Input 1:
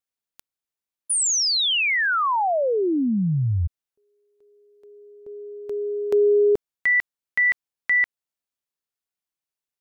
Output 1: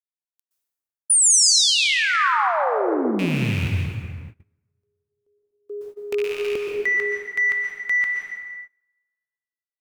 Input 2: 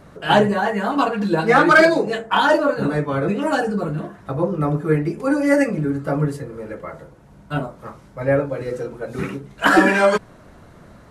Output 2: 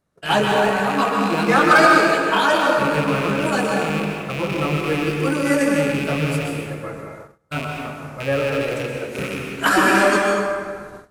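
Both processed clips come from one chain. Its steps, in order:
loose part that buzzes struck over −31 dBFS, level −18 dBFS
in parallel at −11 dB: soft clipping −15 dBFS
on the sum: high-shelf EQ 4,400 Hz +12 dB
dense smooth reverb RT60 2.1 s, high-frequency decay 0.55×, pre-delay 110 ms, DRR −0.5 dB
dynamic equaliser 1,200 Hz, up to +4 dB, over −31 dBFS, Q 3.4
noise gate −31 dBFS, range −25 dB
level −6 dB

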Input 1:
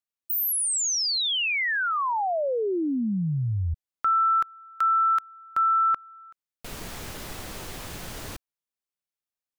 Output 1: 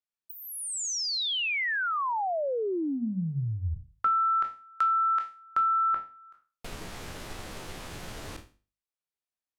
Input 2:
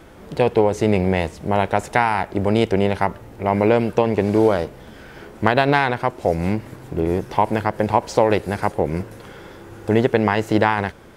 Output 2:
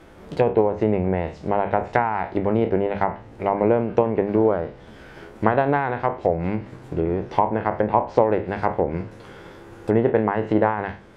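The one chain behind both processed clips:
peak hold with a decay on every bin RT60 0.35 s
transient designer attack +3 dB, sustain −1 dB
high-shelf EQ 5,600 Hz −5.5 dB
mains-hum notches 50/100/150/200/250 Hz
treble cut that deepens with the level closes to 1,400 Hz, closed at −13 dBFS
level −3.5 dB

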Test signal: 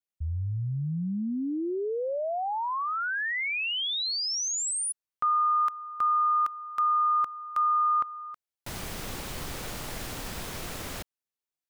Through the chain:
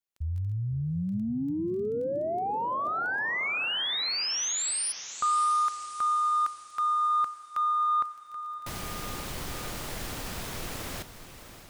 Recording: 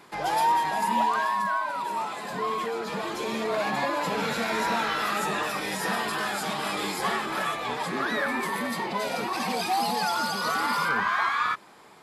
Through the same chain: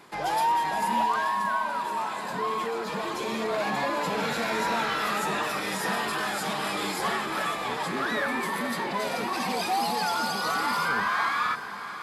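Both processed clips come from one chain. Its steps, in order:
surface crackle 12 per second −42 dBFS
soft clipping −17 dBFS
on a send: feedback delay with all-pass diffusion 622 ms, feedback 46%, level −11.5 dB

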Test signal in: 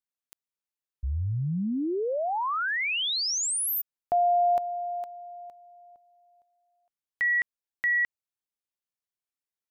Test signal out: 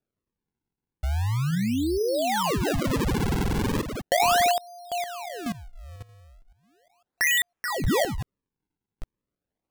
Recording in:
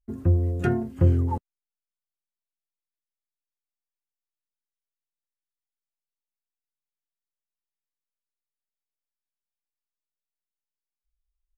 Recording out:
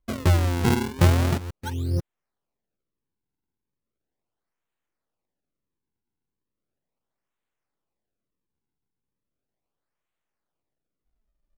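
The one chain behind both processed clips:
delay that plays each chunk backwards 502 ms, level −9 dB
in parallel at −1.5 dB: downward compressor, threshold −32 dBFS
on the sum: sample-and-hold swept by an LFO 41×, swing 160% 0.37 Hz

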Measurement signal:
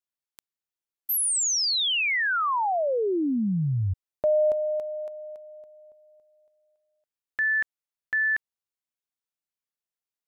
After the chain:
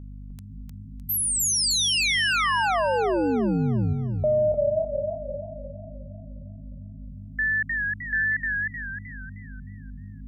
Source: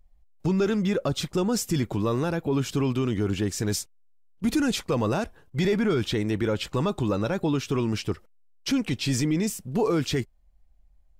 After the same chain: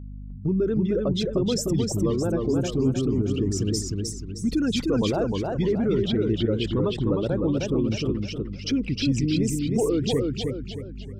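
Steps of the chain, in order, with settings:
spectral envelope exaggerated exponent 2
mains hum 50 Hz, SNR 11 dB
feedback echo with a swinging delay time 307 ms, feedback 41%, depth 104 cents, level −3 dB

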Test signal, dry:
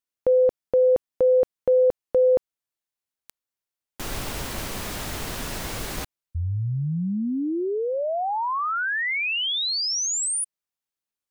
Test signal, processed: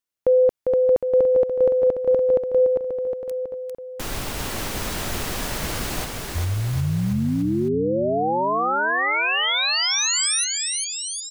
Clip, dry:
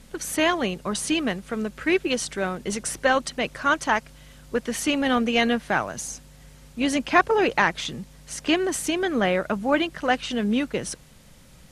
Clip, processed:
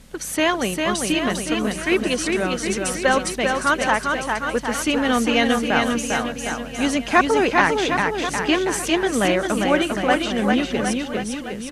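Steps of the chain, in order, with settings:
bouncing-ball delay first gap 400 ms, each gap 0.9×, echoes 5
level +2 dB

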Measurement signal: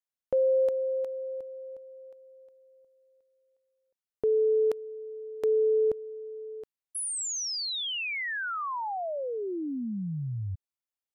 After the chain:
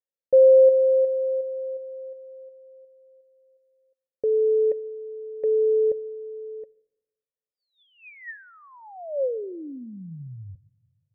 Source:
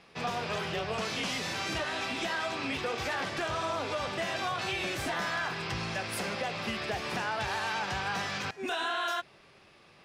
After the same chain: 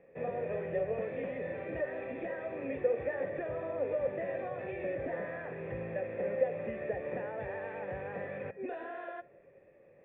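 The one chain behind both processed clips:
formant resonators in series e
tilt shelving filter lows +8.5 dB, about 1,200 Hz
rectangular room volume 3,300 cubic metres, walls furnished, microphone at 0.32 metres
level +5.5 dB

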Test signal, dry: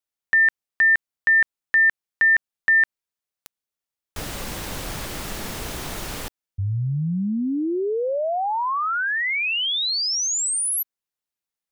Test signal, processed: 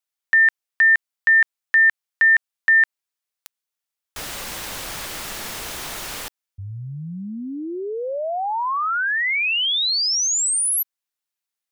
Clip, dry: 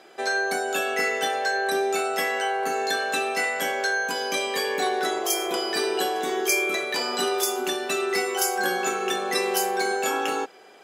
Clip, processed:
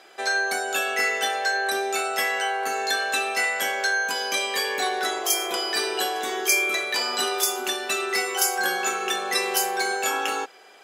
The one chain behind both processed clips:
low-shelf EQ 490 Hz −12 dB
level +3 dB

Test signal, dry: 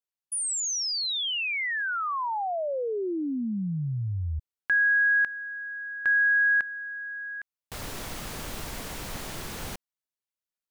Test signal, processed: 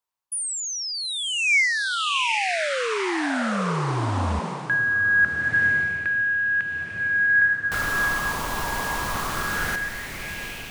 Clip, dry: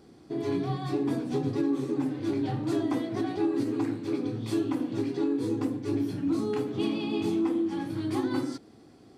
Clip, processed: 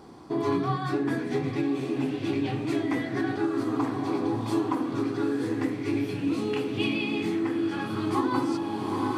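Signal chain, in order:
feedback delay with all-pass diffusion 848 ms, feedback 57%, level −7 dB
speech leveller within 5 dB 0.5 s
auto-filter bell 0.23 Hz 970–2,700 Hz +13 dB

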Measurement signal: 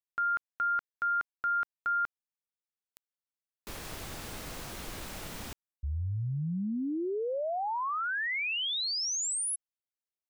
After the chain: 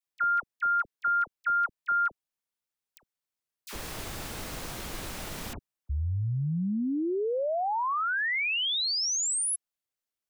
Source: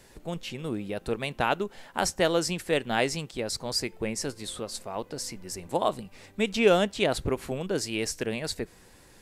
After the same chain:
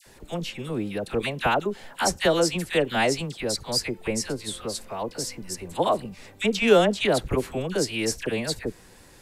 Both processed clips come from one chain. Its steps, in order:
all-pass dispersion lows, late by 63 ms, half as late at 1,200 Hz
level +3.5 dB

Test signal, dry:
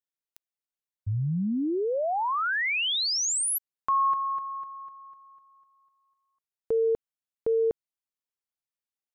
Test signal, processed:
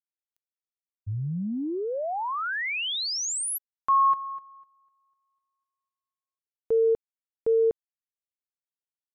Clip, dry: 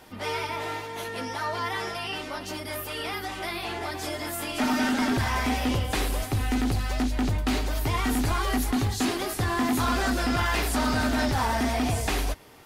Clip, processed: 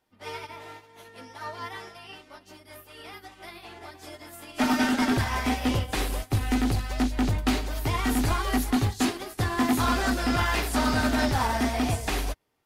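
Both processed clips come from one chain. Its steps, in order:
expander for the loud parts 2.5 to 1, over −41 dBFS
level +3.5 dB

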